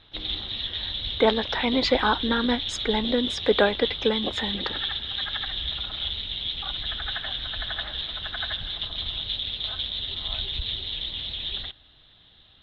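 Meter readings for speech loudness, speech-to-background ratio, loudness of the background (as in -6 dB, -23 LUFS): -25.5 LUFS, 3.5 dB, -29.0 LUFS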